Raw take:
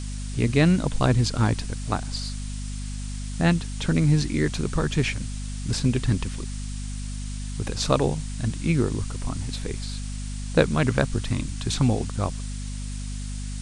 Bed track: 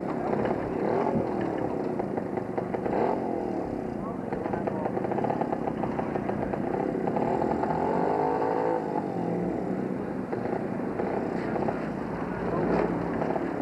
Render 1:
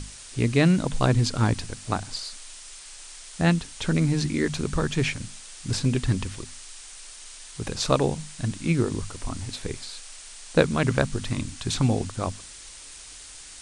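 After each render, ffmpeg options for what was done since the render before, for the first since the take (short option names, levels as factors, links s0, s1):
-af "bandreject=f=50:t=h:w=6,bandreject=f=100:t=h:w=6,bandreject=f=150:t=h:w=6,bandreject=f=200:t=h:w=6,bandreject=f=250:t=h:w=6"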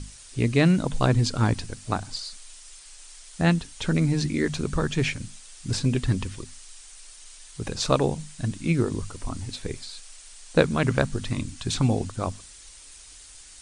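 -af "afftdn=nr=6:nf=-44"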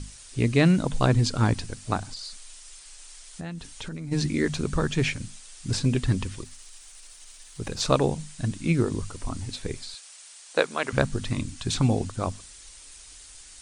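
-filter_complex "[0:a]asplit=3[s0][s1][s2];[s0]afade=t=out:st=2.05:d=0.02[s3];[s1]acompressor=threshold=0.0224:ratio=6:attack=3.2:release=140:knee=1:detection=peak,afade=t=in:st=2.05:d=0.02,afade=t=out:st=4.11:d=0.02[s4];[s2]afade=t=in:st=4.11:d=0.02[s5];[s3][s4][s5]amix=inputs=3:normalize=0,asettb=1/sr,asplit=3[s6][s7][s8];[s6]atrim=end=6.434[s9];[s7]atrim=start=6.43:end=7.81,asetpts=PTS-STARTPTS,afade=t=in:d=0.004:c=qsin,afade=t=out:st=1.376:d=0.004:c=qsin,aeval=exprs='if(lt(val(0),0),0.708*val(0),val(0))':c=same[s10];[s8]atrim=start=7.806[s11];[s9][s10]acrossfade=d=0.004:c1=hsin:c2=qsin[s12];[s12][s11]acrossfade=d=0.004:c1=qsin:c2=hsin,asettb=1/sr,asplit=3[s13][s14][s15];[s13]atrim=end=9.944[s16];[s14]atrim=start=9.94:end=10.93,asetpts=PTS-STARTPTS,afade=t=in:d=0.004:c=qsin,afade=t=out:st=0.986:d=0.004:c=qsin,highpass=510[s17];[s15]atrim=start=10.926[s18];[s16][s17]acrossfade=d=0.004:c1=hsin:c2=qsin[s19];[s19][s18]acrossfade=d=0.004:c1=qsin:c2=hsin"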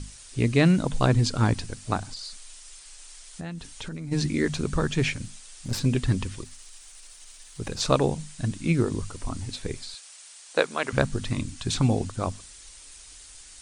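-filter_complex "[0:a]asettb=1/sr,asplit=3[s0][s1][s2];[s0]atrim=end=5.254[s3];[s1]atrim=start=5.25:end=5.83,asetpts=PTS-STARTPTS,afade=t=in:d=0.004:c=qsin,afade=t=out:st=0.576:d=0.004:c=qsin,aeval=exprs='clip(val(0),-1,0.0251)':c=same[s4];[s2]atrim=start=5.826[s5];[s3][s4]acrossfade=d=0.004:c1=hsin:c2=qsin[s6];[s6][s5]acrossfade=d=0.004:c1=qsin:c2=hsin"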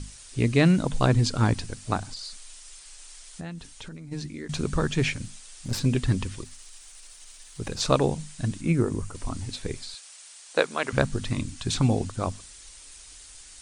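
-filter_complex "[0:a]asettb=1/sr,asplit=3[s0][s1][s2];[s0]atrim=end=8.614[s3];[s1]atrim=start=8.61:end=9.15,asetpts=PTS-STARTPTS,afade=t=in:d=0.004:c=qsin,afade=t=out:st=0.536:d=0.004:c=qsin,equalizer=f=3900:w=1.2:g=-8.5[s4];[s2]atrim=start=9.146[s5];[s3][s4]acrossfade=d=0.004:c1=hsin:c2=qsin[s6];[s6][s5]acrossfade=d=0.004:c1=qsin:c2=hsin,asplit=2[s7][s8];[s7]atrim=end=4.49,asetpts=PTS-STARTPTS,afade=t=out:st=3.28:d=1.21:silence=0.16788[s9];[s8]atrim=start=4.49,asetpts=PTS-STARTPTS,afade=t=in:d=0.004:c=hsin:silence=0.16788[s10];[s9][s10]concat=n=2:v=0:a=1"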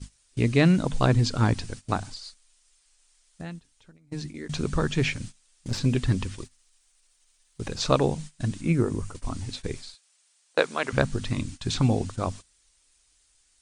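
-filter_complex "[0:a]agate=range=0.126:threshold=0.0141:ratio=16:detection=peak,acrossover=split=7700[s0][s1];[s1]acompressor=threshold=0.00178:ratio=4:attack=1:release=60[s2];[s0][s2]amix=inputs=2:normalize=0"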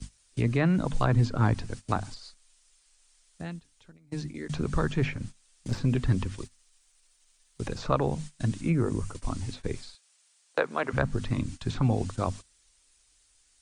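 -filter_complex "[0:a]acrossover=split=120|700|1900[s0][s1][s2][s3];[s1]alimiter=limit=0.0944:level=0:latency=1[s4];[s3]acompressor=threshold=0.00562:ratio=6[s5];[s0][s4][s2][s5]amix=inputs=4:normalize=0"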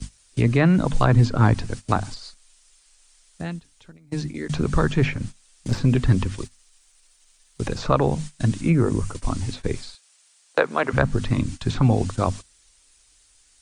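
-af "volume=2.24,alimiter=limit=0.708:level=0:latency=1"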